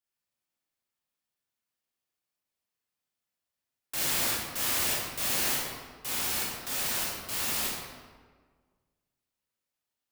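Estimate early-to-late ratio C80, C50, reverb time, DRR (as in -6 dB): 1.5 dB, -1.5 dB, 1.6 s, -6.5 dB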